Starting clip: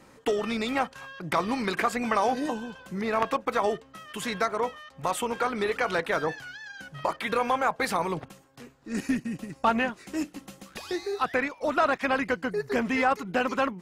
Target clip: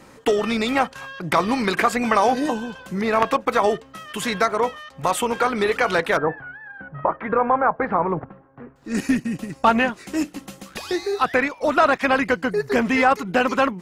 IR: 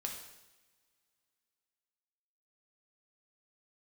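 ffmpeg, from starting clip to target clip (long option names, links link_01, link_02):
-filter_complex "[0:a]asettb=1/sr,asplit=3[link_01][link_02][link_03];[link_01]atrim=end=6.174[link_04];[link_02]atrim=start=6.17:end=8.76,asetpts=PTS-STARTPTS,afade=type=in:duration=0.004:curve=qsin,afade=type=out:start_time=2.586:duration=0.004:curve=qsin,lowpass=frequency=1600:width=0.5412,lowpass=frequency=1600:width=1.3066[link_05];[link_03]atrim=start=8.756[link_06];[link_04][link_05]acrossfade=duration=0.004:curve1=hsin:curve2=qsin[link_07];[link_07][link_06]acrossfade=duration=0.004:curve1=qsin:curve2=hsin,volume=7dB"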